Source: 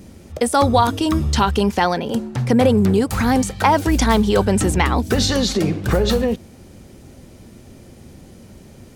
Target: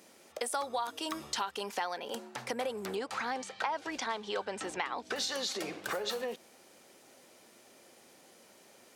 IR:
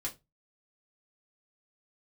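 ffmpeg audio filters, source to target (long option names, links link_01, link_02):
-filter_complex "[0:a]highpass=620,acompressor=threshold=-26dB:ratio=4,asettb=1/sr,asplit=3[link_01][link_02][link_03];[link_01]atrim=end=2.954[link_04];[link_02]atrim=start=2.95:end=5.16,asetpts=PTS-STARTPTS,afade=type=in:duration=0.004:curve=qsin,afade=type=out:start_time=2.206:duration=0.004:curve=qsin,lowpass=5000[link_05];[link_03]atrim=start=5.156[link_06];[link_04][link_05]acrossfade=duration=0.004:curve1=hsin:curve2=qsin[link_07];[link_07][link_06]acrossfade=duration=0.004:curve1=qsin:curve2=hsin,volume=-6.5dB"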